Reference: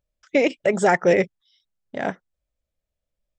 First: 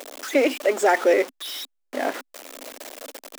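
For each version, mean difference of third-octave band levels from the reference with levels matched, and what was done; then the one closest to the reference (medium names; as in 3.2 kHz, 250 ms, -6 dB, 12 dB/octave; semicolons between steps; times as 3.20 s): 9.5 dB: jump at every zero crossing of -24.5 dBFS; elliptic high-pass 260 Hz, stop band 40 dB; trim -1.5 dB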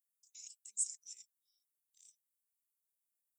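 22.0 dB: inverse Chebyshev high-pass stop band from 1.7 kHz, stop band 80 dB; trim +9 dB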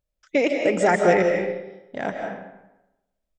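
4.0 dB: speakerphone echo 110 ms, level -18 dB; algorithmic reverb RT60 0.97 s, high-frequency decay 0.65×, pre-delay 115 ms, DRR 2.5 dB; trim -2 dB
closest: third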